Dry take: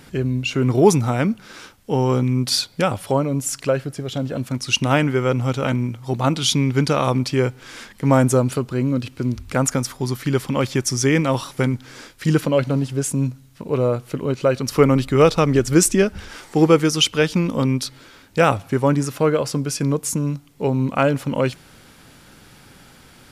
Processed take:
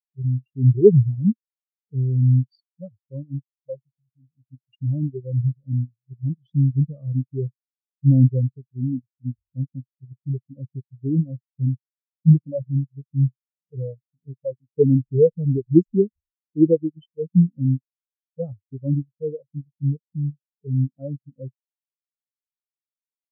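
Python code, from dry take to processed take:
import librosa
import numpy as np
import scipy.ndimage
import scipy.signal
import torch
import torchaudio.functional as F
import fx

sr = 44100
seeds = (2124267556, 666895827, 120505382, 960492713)

p1 = fx.env_phaser(x, sr, low_hz=190.0, high_hz=2000.0, full_db=-16.0)
p2 = fx.level_steps(p1, sr, step_db=22)
p3 = p1 + (p2 * librosa.db_to_amplitude(0.0))
p4 = fx.low_shelf(p3, sr, hz=290.0, db=6.0)
p5 = fx.notch(p4, sr, hz=5700.0, q=25.0)
p6 = fx.spectral_expand(p5, sr, expansion=4.0)
y = p6 * librosa.db_to_amplitude(-2.5)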